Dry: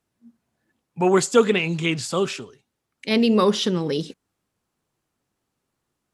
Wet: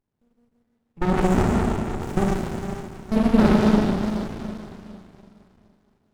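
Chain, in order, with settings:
0:01.19–0:03.33: flat-topped bell 3,200 Hz −13.5 dB
output level in coarse steps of 21 dB
four-comb reverb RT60 3 s, combs from 29 ms, DRR −6 dB
windowed peak hold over 65 samples
level +2.5 dB

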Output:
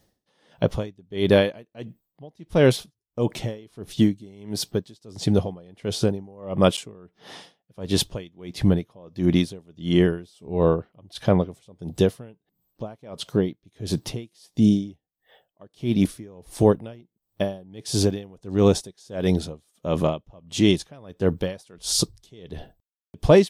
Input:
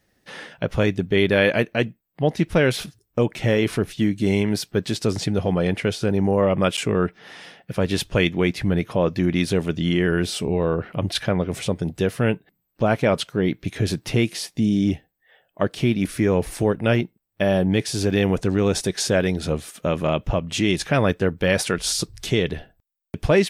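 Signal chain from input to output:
flat-topped bell 1,900 Hz −8 dB 1.2 octaves
tremolo with a sine in dB 1.5 Hz, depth 31 dB
level +4 dB

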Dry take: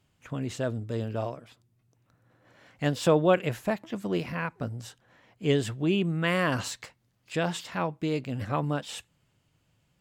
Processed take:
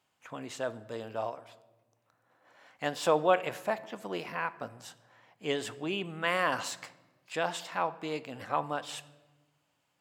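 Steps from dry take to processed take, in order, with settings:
high-pass filter 650 Hz 6 dB per octave
parametric band 860 Hz +6.5 dB 1.2 octaves
on a send: convolution reverb RT60 1.2 s, pre-delay 4 ms, DRR 15 dB
on the sum: level −2.5 dB

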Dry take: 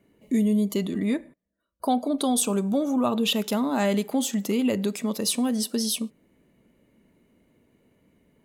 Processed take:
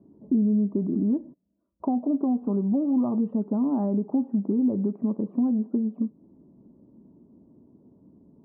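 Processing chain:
Butterworth low-pass 1,000 Hz 36 dB per octave
downward compressor 2 to 1, threshold −37 dBFS, peak gain reduction 10.5 dB
high-pass filter 130 Hz 6 dB per octave
low shelf with overshoot 400 Hz +6.5 dB, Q 1.5
notch filter 480 Hz, Q 15
level +3 dB

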